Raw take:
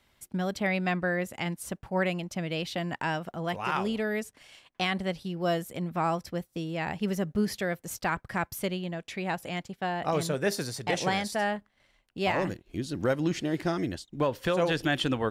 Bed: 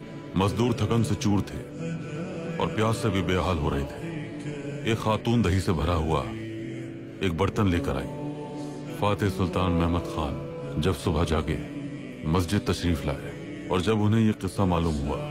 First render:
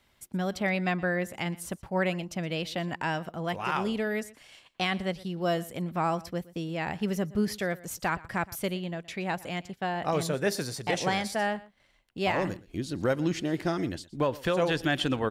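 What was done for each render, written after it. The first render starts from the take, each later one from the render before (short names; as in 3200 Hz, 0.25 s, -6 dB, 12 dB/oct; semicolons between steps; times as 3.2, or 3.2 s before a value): echo 0.119 s -20.5 dB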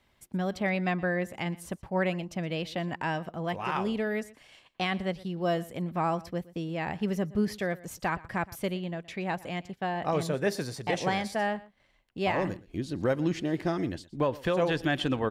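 high shelf 3800 Hz -7 dB; notch 1400 Hz, Q 16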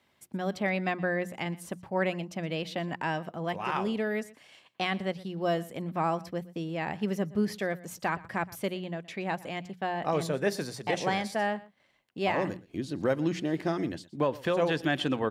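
HPF 120 Hz 12 dB/oct; notches 60/120/180 Hz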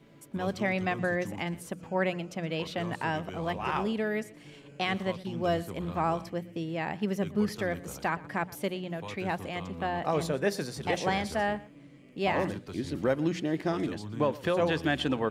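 add bed -17.5 dB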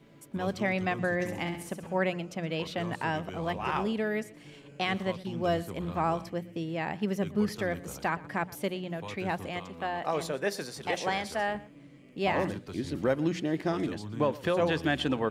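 1.13–1.98 flutter echo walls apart 11.5 m, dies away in 0.57 s; 9.59–11.55 low shelf 250 Hz -10.5 dB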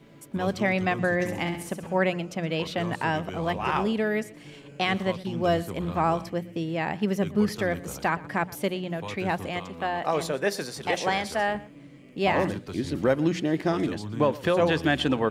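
gain +4.5 dB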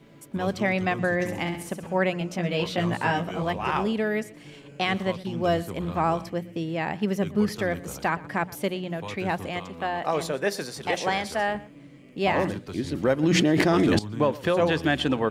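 2.19–3.43 doubler 17 ms -2 dB; 13.23–13.99 fast leveller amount 100%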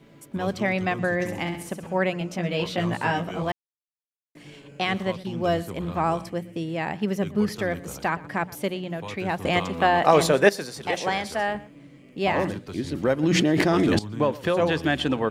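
3.52–4.35 mute; 6.06–6.93 bell 9100 Hz +6.5 dB 0.45 oct; 9.45–10.49 gain +9 dB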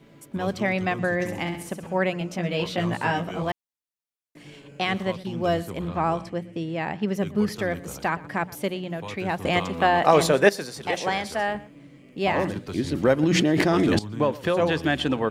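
5.88–7.15 air absorption 54 m; 12.56–13.24 gain +3 dB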